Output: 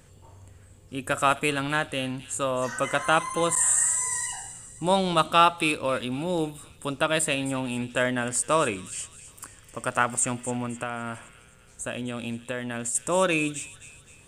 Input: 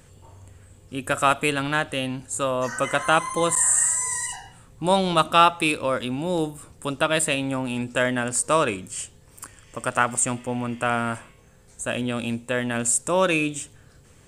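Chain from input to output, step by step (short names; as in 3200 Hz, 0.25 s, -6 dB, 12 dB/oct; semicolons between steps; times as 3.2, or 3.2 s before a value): thin delay 0.26 s, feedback 49%, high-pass 2800 Hz, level -13 dB; 10.65–12.95 compressor 5:1, threshold -26 dBFS, peak gain reduction 7.5 dB; gain -2.5 dB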